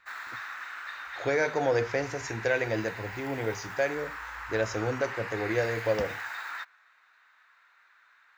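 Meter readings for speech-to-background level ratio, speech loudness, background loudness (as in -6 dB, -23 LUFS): 8.0 dB, -30.5 LUFS, -38.5 LUFS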